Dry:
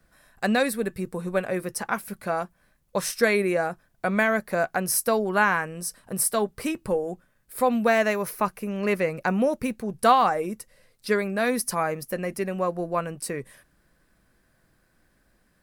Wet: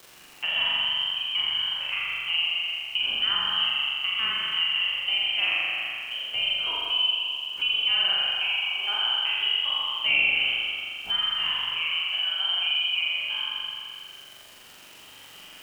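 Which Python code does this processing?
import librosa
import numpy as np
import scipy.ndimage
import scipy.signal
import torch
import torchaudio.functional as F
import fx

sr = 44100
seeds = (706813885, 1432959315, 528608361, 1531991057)

y = fx.spec_trails(x, sr, decay_s=1.36)
y = fx.recorder_agc(y, sr, target_db=-10.5, rise_db_per_s=6.9, max_gain_db=30)
y = scipy.signal.sosfilt(scipy.signal.cheby2(4, 40, 170.0, 'highpass', fs=sr, output='sos'), y)
y = fx.peak_eq(y, sr, hz=1600.0, db=-14.5, octaves=0.52)
y = fx.freq_invert(y, sr, carrier_hz=3500)
y = fx.dmg_crackle(y, sr, seeds[0], per_s=530.0, level_db=-42.0)
y = fx.room_flutter(y, sr, wall_m=7.3, rt60_s=1.4)
y = fx.band_squash(y, sr, depth_pct=40)
y = F.gain(torch.from_numpy(y), -7.0).numpy()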